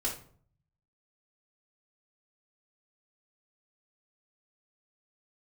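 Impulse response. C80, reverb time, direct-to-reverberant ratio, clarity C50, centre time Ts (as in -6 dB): 13.0 dB, 0.50 s, -6.5 dB, 7.5 dB, 22 ms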